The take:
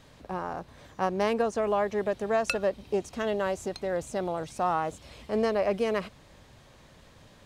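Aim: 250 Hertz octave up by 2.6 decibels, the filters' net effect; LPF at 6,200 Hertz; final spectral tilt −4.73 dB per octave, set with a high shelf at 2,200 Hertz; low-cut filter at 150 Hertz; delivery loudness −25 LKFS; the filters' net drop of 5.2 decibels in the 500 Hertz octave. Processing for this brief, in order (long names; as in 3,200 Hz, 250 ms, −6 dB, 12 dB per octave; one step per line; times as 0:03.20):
high-pass filter 150 Hz
low-pass filter 6,200 Hz
parametric band 250 Hz +6.5 dB
parametric band 500 Hz −9 dB
high-shelf EQ 2,200 Hz +6 dB
level +6.5 dB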